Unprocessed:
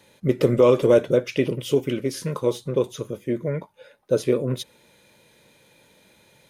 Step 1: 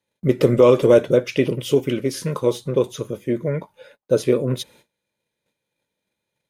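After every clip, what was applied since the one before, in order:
noise gate −52 dBFS, range −27 dB
level +3 dB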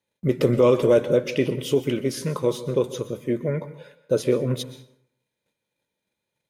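in parallel at −0.5 dB: brickwall limiter −10 dBFS, peak gain reduction 7.5 dB
on the sum: dense smooth reverb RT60 0.68 s, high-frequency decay 0.6×, pre-delay 110 ms, DRR 14 dB
level −8 dB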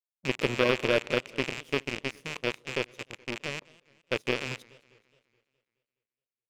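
loose part that buzzes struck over −34 dBFS, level −12 dBFS
power curve on the samples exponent 2
feedback echo with a swinging delay time 210 ms, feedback 51%, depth 202 cents, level −23.5 dB
level −1.5 dB

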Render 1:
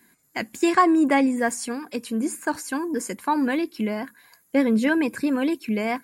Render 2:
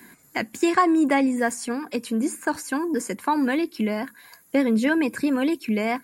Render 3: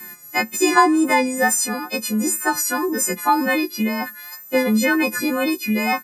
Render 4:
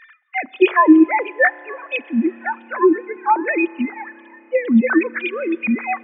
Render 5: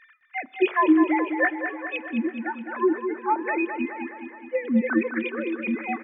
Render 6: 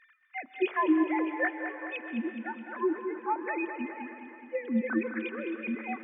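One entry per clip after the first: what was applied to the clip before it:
multiband upward and downward compressor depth 40%
every partial snapped to a pitch grid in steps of 3 semitones; comb filter 5.6 ms, depth 47%; tape wow and flutter 36 cents; level +2.5 dB
three sine waves on the formant tracks; spring reverb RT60 3.5 s, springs 30 ms, chirp 55 ms, DRR 9 dB; reverb reduction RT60 1.3 s; level +2.5 dB
repeating echo 210 ms, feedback 59%, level −8 dB; level −8 dB
dense smooth reverb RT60 2.6 s, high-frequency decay 1×, pre-delay 120 ms, DRR 11 dB; level −7 dB

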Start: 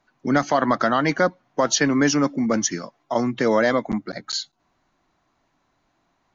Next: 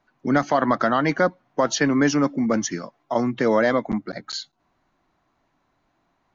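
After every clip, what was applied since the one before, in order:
high-shelf EQ 4,600 Hz −8.5 dB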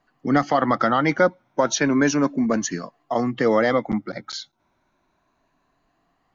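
rippled gain that drifts along the octave scale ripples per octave 1.5, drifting +0.33 Hz, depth 7 dB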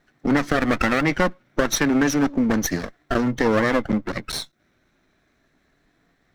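lower of the sound and its delayed copy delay 0.53 ms
downward compressor 2 to 1, threshold −25 dBFS, peak gain reduction 6.5 dB
level +5.5 dB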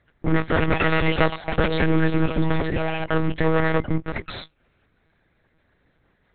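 delay with pitch and tempo change per echo 362 ms, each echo +6 semitones, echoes 3, each echo −6 dB
one-pitch LPC vocoder at 8 kHz 160 Hz

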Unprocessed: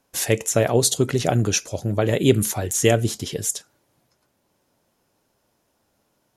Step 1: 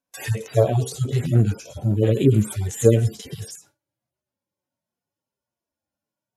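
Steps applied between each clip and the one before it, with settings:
harmonic-percussive split with one part muted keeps harmonic
noise gate with hold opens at −42 dBFS
level +4.5 dB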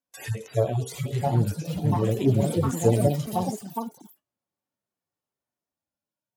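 delay with pitch and tempo change per echo 782 ms, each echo +4 semitones, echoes 3
level −6 dB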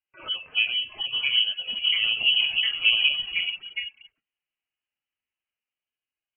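voice inversion scrambler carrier 3,100 Hz
level −1 dB

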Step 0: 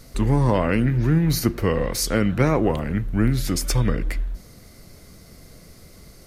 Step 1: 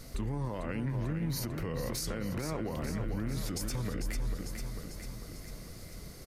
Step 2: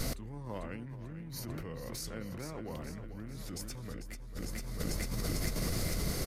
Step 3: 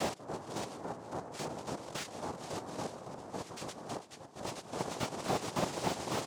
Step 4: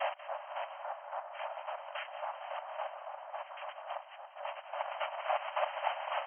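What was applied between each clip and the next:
downward compressor 5 to 1, threshold −27 dBFS, peak gain reduction 12.5 dB; on a send: repeating echo 446 ms, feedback 59%, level −8.5 dB; on the sum: brickwall limiter −24 dBFS, peak gain reduction 9 dB; level −2 dB
compressor whose output falls as the input rises −45 dBFS, ratio −1; level +5.5 dB
square-wave tremolo 3.6 Hz, depth 60%, duty 30%; cochlear-implant simulation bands 2; slew-rate limiting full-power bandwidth 28 Hz; level +5.5 dB
linear-phase brick-wall band-pass 550–3,200 Hz; echo with a time of its own for lows and highs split 1,400 Hz, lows 280 ms, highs 186 ms, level −12 dB; level +3 dB

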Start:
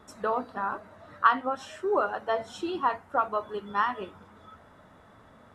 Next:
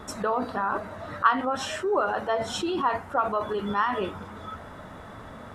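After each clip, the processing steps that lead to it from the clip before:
low-shelf EQ 63 Hz +5 dB
in parallel at +1.5 dB: compressor whose output falls as the input rises −38 dBFS, ratio −1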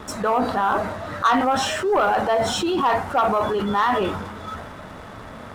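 dynamic equaliser 780 Hz, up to +6 dB, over −42 dBFS, Q 5.1
transient designer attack −2 dB, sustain +5 dB
leveller curve on the samples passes 2
level −1.5 dB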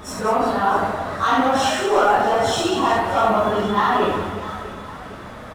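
random phases in long frames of 100 ms
on a send: reverse bouncing-ball delay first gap 70 ms, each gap 1.6×, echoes 5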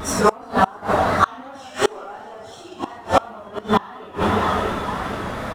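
pitch vibrato 2.8 Hz 64 cents
repeating echo 557 ms, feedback 36%, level −16 dB
gate with flip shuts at −10 dBFS, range −27 dB
level +7.5 dB

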